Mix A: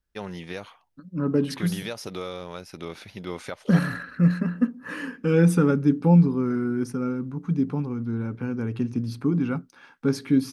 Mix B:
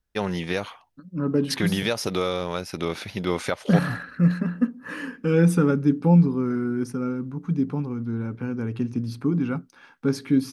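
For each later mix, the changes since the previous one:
first voice +8.5 dB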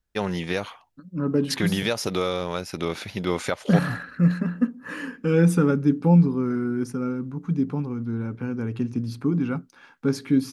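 master: remove notch 7100 Hz, Q 13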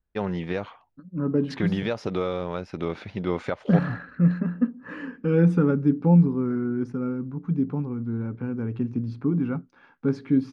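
master: add tape spacing loss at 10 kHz 29 dB

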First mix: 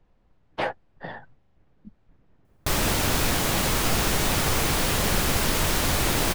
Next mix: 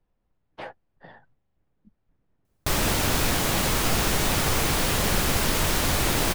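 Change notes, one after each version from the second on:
speech -11.0 dB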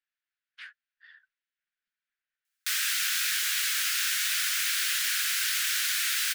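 master: add elliptic high-pass 1500 Hz, stop band 50 dB

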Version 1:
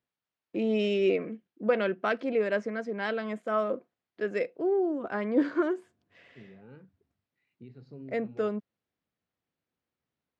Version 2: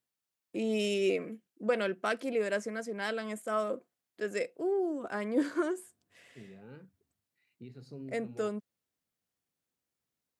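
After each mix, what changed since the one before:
first voice -4.5 dB; master: remove air absorption 230 m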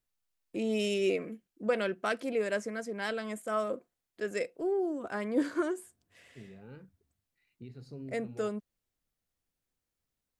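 master: remove HPF 120 Hz 12 dB/oct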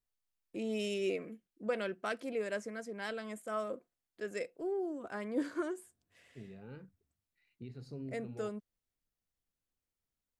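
first voice -5.5 dB

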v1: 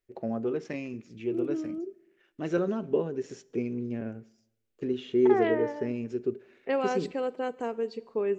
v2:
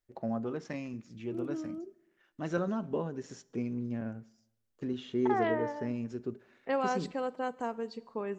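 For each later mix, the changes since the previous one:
master: add fifteen-band EQ 400 Hz -10 dB, 1000 Hz +3 dB, 2500 Hz -6 dB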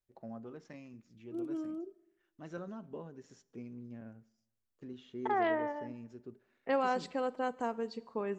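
first voice -11.5 dB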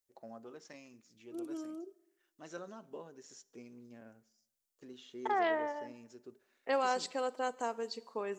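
master: add tone controls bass -13 dB, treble +12 dB

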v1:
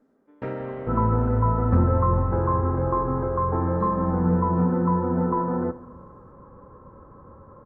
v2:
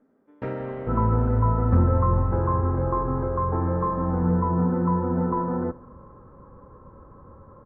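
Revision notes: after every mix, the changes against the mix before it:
speech -11.5 dB; second sound: send -7.0 dB; master: add low shelf 78 Hz +5.5 dB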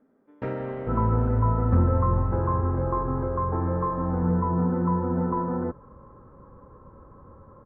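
speech: muted; second sound: send off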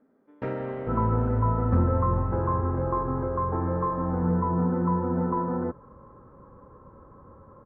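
master: add low shelf 78 Hz -5.5 dB

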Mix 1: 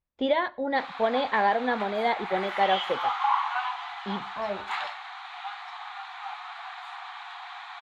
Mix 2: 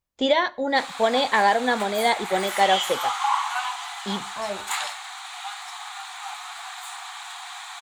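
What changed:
first voice +3.0 dB; master: remove air absorption 310 m

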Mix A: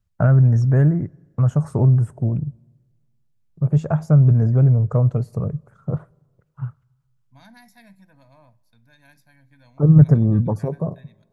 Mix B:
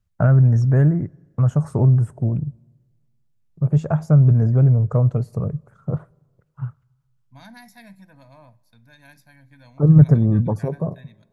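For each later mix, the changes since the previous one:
second voice +4.5 dB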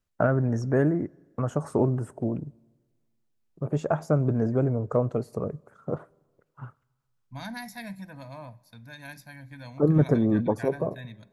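first voice: add resonant low shelf 200 Hz -11 dB, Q 1.5; second voice +6.5 dB

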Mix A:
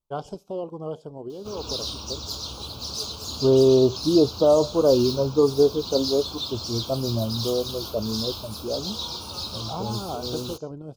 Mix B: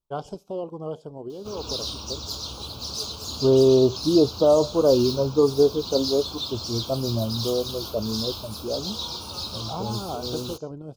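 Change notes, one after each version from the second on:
none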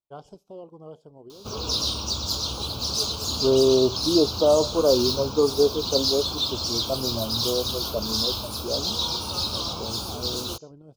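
first voice -10.0 dB; second voice: add HPF 290 Hz 6 dB/oct; background +5.5 dB

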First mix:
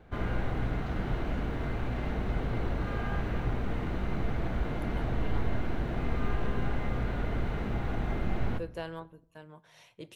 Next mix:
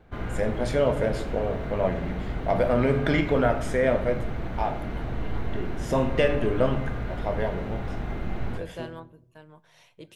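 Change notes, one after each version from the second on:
first voice: unmuted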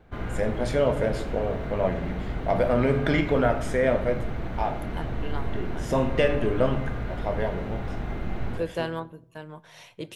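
second voice +9.0 dB

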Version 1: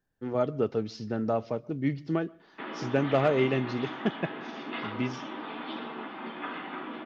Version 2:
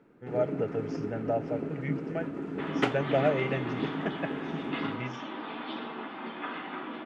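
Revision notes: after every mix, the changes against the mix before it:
speech: add fixed phaser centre 1100 Hz, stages 6; first sound: unmuted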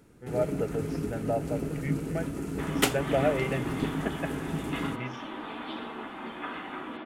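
first sound: remove BPF 200–2100 Hz

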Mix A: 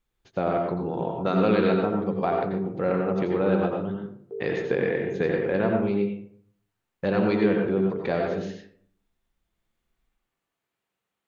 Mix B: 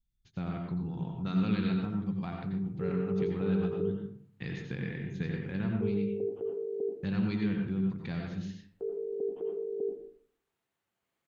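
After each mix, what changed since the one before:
speech: add EQ curve 160 Hz 0 dB, 580 Hz -25 dB, 820 Hz -17 dB, 3600 Hz -6 dB; background: entry +1.50 s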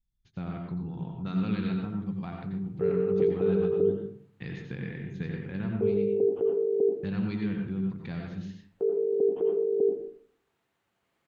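background +9.0 dB; master: add high shelf 5500 Hz -7.5 dB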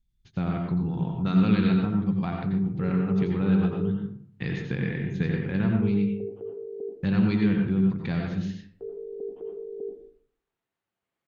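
speech +8.0 dB; background -10.5 dB

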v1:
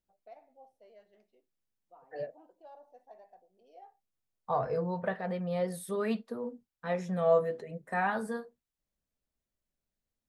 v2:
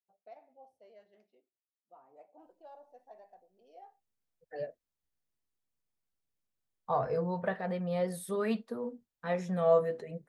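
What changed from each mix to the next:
second voice: entry +2.40 s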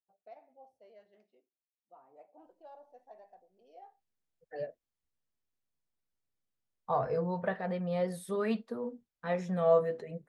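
master: add high shelf 11000 Hz -11 dB

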